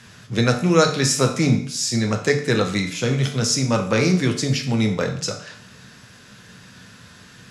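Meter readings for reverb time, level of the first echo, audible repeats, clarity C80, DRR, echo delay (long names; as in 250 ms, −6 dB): 0.60 s, no echo audible, no echo audible, 12.5 dB, 3.0 dB, no echo audible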